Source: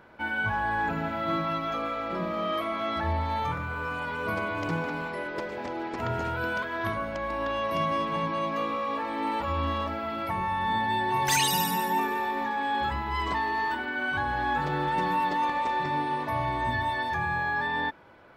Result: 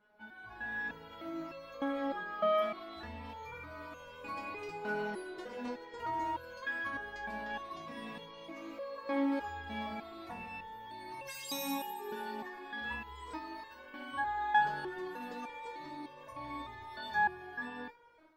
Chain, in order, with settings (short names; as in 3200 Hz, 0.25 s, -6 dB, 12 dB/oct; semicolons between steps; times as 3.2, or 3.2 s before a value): de-hum 101.1 Hz, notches 27; limiter -23.5 dBFS, peak gain reduction 12 dB; AGC gain up to 12.5 dB; stepped resonator 3.3 Hz 210–540 Hz; gain -4 dB